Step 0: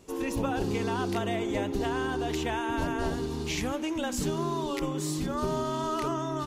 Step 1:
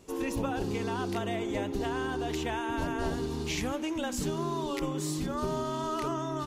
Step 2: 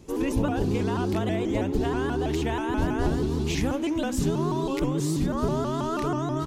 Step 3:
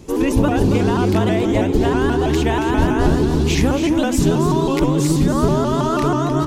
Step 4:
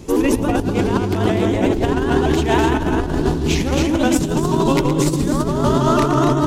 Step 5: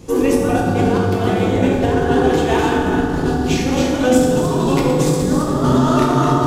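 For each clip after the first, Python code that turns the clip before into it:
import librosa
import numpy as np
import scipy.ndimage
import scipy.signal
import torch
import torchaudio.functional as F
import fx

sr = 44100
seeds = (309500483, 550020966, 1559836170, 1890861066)

y1 = fx.rider(x, sr, range_db=10, speed_s=0.5)
y1 = y1 * 10.0 ** (-2.0 / 20.0)
y2 = fx.low_shelf(y1, sr, hz=380.0, db=8.5)
y2 = fx.vibrato_shape(y2, sr, shape='saw_up', rate_hz=6.2, depth_cents=160.0)
y2 = y2 * 10.0 ** (1.5 / 20.0)
y3 = y2 + 10.0 ** (-9.0 / 20.0) * np.pad(y2, (int(277 * sr / 1000.0), 0))[:len(y2)]
y3 = y3 * 10.0 ** (9.0 / 20.0)
y4 = fx.echo_multitap(y3, sr, ms=(115, 247), db=(-8.0, -7.5))
y4 = fx.over_compress(y4, sr, threshold_db=-17.0, ratio=-0.5)
y4 = y4 * 10.0 ** (1.0 / 20.0)
y5 = fx.rev_fdn(y4, sr, rt60_s=1.7, lf_ratio=0.75, hf_ratio=0.6, size_ms=12.0, drr_db=-3.5)
y5 = y5 * 10.0 ** (-3.5 / 20.0)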